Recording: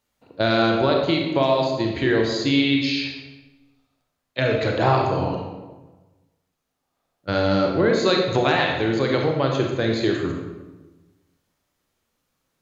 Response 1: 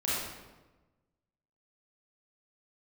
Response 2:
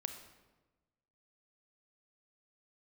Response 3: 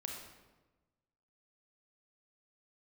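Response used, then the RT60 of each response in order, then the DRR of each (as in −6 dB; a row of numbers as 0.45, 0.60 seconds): 3; 1.2, 1.2, 1.2 seconds; −8.5, 7.0, 0.5 decibels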